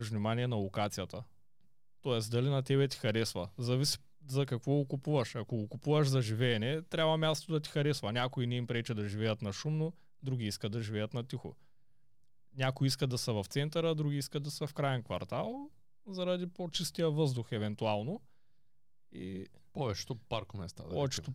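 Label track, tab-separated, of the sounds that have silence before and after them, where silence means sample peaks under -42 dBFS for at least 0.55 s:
2.050000	11.500000	sound
12.580000	18.170000	sound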